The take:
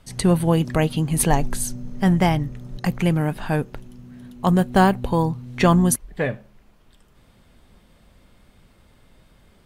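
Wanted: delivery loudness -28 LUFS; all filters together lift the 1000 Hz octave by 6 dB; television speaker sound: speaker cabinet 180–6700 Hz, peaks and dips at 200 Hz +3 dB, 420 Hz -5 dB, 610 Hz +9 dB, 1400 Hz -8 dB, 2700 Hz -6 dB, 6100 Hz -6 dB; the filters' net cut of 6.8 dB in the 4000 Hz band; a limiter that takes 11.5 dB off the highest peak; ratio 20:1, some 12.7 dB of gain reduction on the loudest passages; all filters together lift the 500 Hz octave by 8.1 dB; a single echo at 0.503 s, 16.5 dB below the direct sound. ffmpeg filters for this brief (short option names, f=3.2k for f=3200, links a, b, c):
-af "equalizer=f=500:t=o:g=4.5,equalizer=f=1k:t=o:g=5,equalizer=f=4k:t=o:g=-6,acompressor=threshold=-20dB:ratio=20,alimiter=limit=-20dB:level=0:latency=1,highpass=f=180:w=0.5412,highpass=f=180:w=1.3066,equalizer=f=200:t=q:w=4:g=3,equalizer=f=420:t=q:w=4:g=-5,equalizer=f=610:t=q:w=4:g=9,equalizer=f=1.4k:t=q:w=4:g=-8,equalizer=f=2.7k:t=q:w=4:g=-6,equalizer=f=6.1k:t=q:w=4:g=-6,lowpass=f=6.7k:w=0.5412,lowpass=f=6.7k:w=1.3066,aecho=1:1:503:0.15,volume=3dB"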